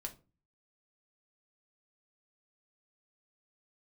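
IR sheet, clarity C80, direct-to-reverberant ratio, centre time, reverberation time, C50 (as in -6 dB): 22.5 dB, 2.5 dB, 8 ms, 0.35 s, 15.5 dB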